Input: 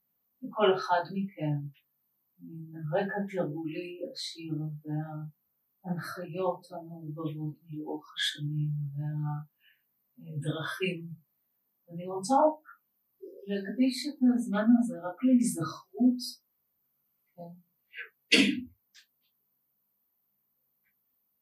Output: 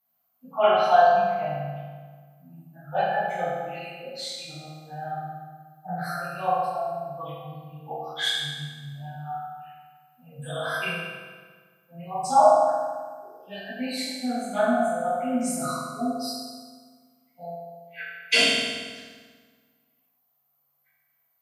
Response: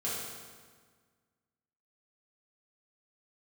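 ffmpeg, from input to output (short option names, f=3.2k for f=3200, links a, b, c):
-filter_complex "[0:a]lowshelf=f=520:t=q:w=3:g=-9[a];[1:a]atrim=start_sample=2205[b];[a][b]afir=irnorm=-1:irlink=0,volume=1.5dB"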